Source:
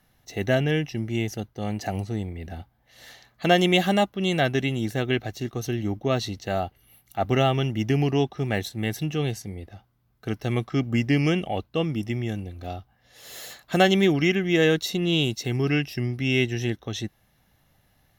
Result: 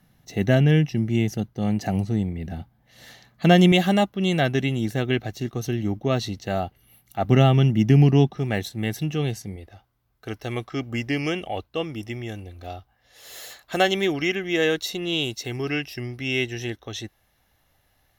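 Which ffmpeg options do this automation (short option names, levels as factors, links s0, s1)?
-af "asetnsamples=n=441:p=0,asendcmd='3.72 equalizer g 3.5;7.29 equalizer g 11;8.37 equalizer g 2;9.56 equalizer g -9',equalizer=f=170:t=o:w=1.3:g=9.5"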